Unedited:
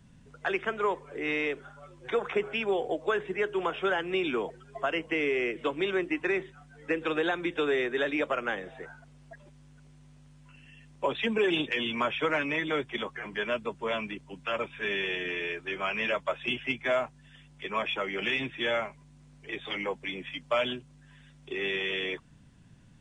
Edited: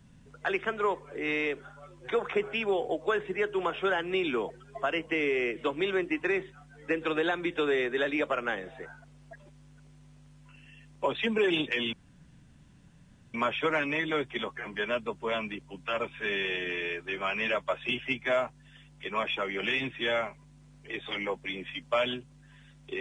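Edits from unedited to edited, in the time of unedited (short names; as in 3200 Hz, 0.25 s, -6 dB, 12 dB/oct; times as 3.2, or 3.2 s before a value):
11.93 insert room tone 1.41 s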